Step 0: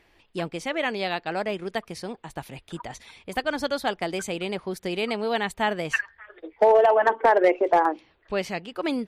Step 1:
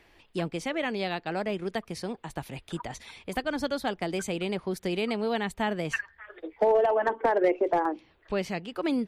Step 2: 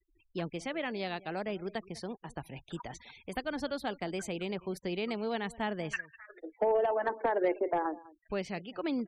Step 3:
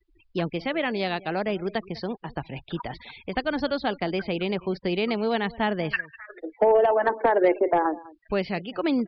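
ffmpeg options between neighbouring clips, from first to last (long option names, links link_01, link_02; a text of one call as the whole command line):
ffmpeg -i in.wav -filter_complex "[0:a]acrossover=split=350[link_01][link_02];[link_02]acompressor=threshold=-41dB:ratio=1.5[link_03];[link_01][link_03]amix=inputs=2:normalize=0,volume=1.5dB" out.wav
ffmpeg -i in.wav -af "aecho=1:1:200:0.0944,afftfilt=real='re*gte(hypot(re,im),0.00501)':imag='im*gte(hypot(re,im),0.00501)':win_size=1024:overlap=0.75,volume=-5.5dB" out.wav
ffmpeg -i in.wav -af "aresample=11025,aresample=44100,volume=9dB" out.wav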